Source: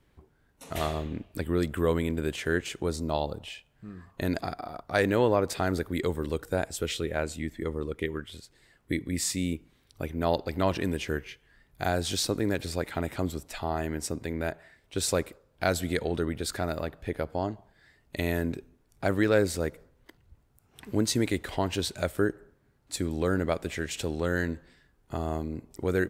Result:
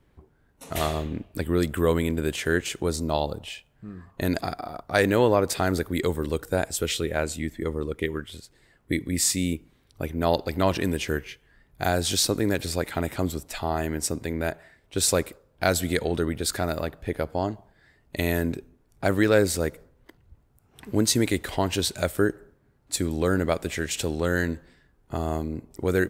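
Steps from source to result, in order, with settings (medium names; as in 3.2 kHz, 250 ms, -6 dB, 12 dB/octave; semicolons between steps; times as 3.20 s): treble shelf 5.7 kHz +6 dB; tape noise reduction on one side only decoder only; trim +3.5 dB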